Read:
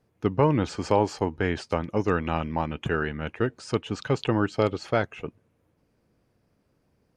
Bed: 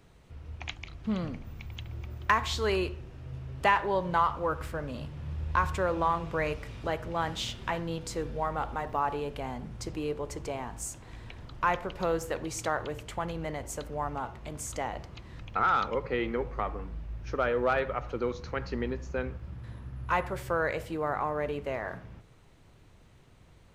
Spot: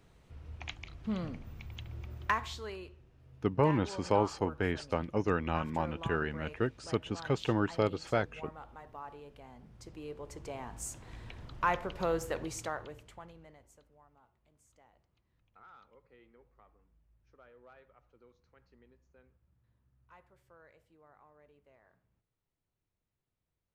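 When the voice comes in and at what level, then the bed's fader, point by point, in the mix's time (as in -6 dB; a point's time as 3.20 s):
3.20 s, -6.0 dB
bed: 2.25 s -4 dB
2.78 s -16.5 dB
9.48 s -16.5 dB
10.96 s -2.5 dB
12.42 s -2.5 dB
14.07 s -31 dB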